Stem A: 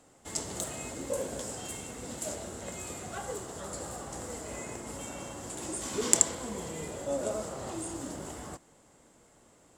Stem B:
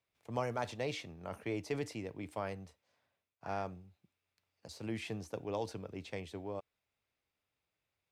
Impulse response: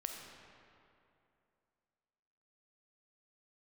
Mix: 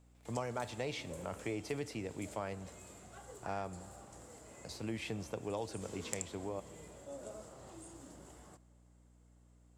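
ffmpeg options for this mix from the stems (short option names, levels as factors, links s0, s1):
-filter_complex "[0:a]aeval=exprs='val(0)+0.00398*(sin(2*PI*60*n/s)+sin(2*PI*2*60*n/s)/2+sin(2*PI*3*60*n/s)/3+sin(2*PI*4*60*n/s)/4+sin(2*PI*5*60*n/s)/5)':c=same,volume=0.158,asplit=2[s0][s1];[s1]volume=0.178[s2];[1:a]volume=1.19,asplit=2[s3][s4];[s4]volume=0.224[s5];[2:a]atrim=start_sample=2205[s6];[s2][s5]amix=inputs=2:normalize=0[s7];[s7][s6]afir=irnorm=-1:irlink=0[s8];[s0][s3][s8]amix=inputs=3:normalize=0,acompressor=threshold=0.0126:ratio=2"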